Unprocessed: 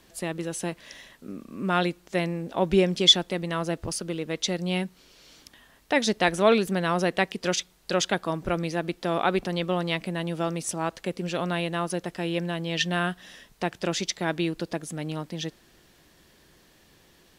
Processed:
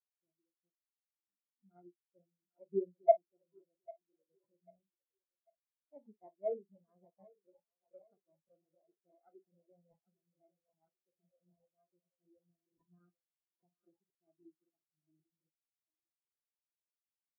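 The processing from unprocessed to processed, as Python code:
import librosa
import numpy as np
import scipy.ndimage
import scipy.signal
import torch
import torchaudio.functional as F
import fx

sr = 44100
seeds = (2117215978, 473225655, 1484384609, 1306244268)

p1 = fx.low_shelf(x, sr, hz=190.0, db=-3.0)
p2 = fx.room_early_taps(p1, sr, ms=(25, 51), db=(-12.0, -7.0))
p3 = fx.sample_hold(p2, sr, seeds[0], rate_hz=2800.0, jitter_pct=0)
p4 = p3 + fx.echo_thinned(p3, sr, ms=795, feedback_pct=75, hz=250.0, wet_db=-6, dry=0)
p5 = fx.spectral_expand(p4, sr, expansion=4.0)
y = p5 * 10.0 ** (-8.0 / 20.0)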